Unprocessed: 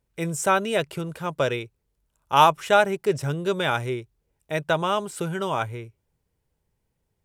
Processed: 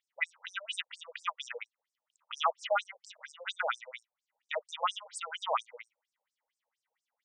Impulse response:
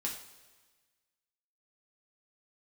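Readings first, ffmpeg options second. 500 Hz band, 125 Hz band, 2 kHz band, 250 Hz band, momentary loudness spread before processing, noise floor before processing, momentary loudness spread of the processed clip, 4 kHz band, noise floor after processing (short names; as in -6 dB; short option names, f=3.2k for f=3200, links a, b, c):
-15.5 dB, under -40 dB, -9.5 dB, under -40 dB, 14 LU, -76 dBFS, 16 LU, -7.0 dB, under -85 dBFS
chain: -af "alimiter=limit=-16dB:level=0:latency=1:release=403,equalizer=f=1.25k:t=o:w=0.33:g=7,equalizer=f=2k:t=o:w=0.33:g=10,equalizer=f=3.15k:t=o:w=0.33:g=8,afftfilt=real='re*between(b*sr/1024,640*pow(6900/640,0.5+0.5*sin(2*PI*4.3*pts/sr))/1.41,640*pow(6900/640,0.5+0.5*sin(2*PI*4.3*pts/sr))*1.41)':imag='im*between(b*sr/1024,640*pow(6900/640,0.5+0.5*sin(2*PI*4.3*pts/sr))/1.41,640*pow(6900/640,0.5+0.5*sin(2*PI*4.3*pts/sr))*1.41)':win_size=1024:overlap=0.75"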